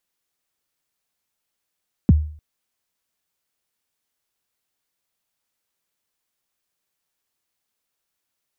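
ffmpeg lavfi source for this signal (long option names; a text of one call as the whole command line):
ffmpeg -f lavfi -i "aevalsrc='0.501*pow(10,-3*t/0.48)*sin(2*PI*(280*0.027/log(76/280)*(exp(log(76/280)*min(t,0.027)/0.027)-1)+76*max(t-0.027,0)))':duration=0.3:sample_rate=44100" out.wav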